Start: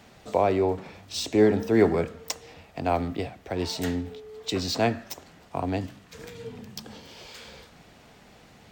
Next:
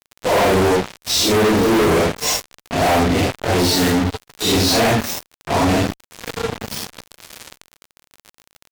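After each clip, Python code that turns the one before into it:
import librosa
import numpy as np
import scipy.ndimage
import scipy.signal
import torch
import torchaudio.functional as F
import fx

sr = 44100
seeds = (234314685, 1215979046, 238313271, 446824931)

y = fx.phase_scramble(x, sr, seeds[0], window_ms=200)
y = fx.fuzz(y, sr, gain_db=40.0, gate_db=-38.0)
y = fx.dmg_crackle(y, sr, seeds[1], per_s=33.0, level_db=-26.0)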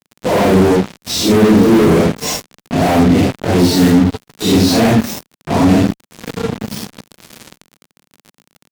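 y = fx.peak_eq(x, sr, hz=200.0, db=11.5, octaves=1.8)
y = y * 10.0 ** (-1.0 / 20.0)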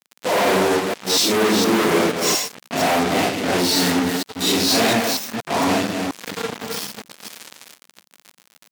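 y = fx.reverse_delay(x, sr, ms=235, wet_db=-4.5)
y = fx.highpass(y, sr, hz=900.0, slope=6)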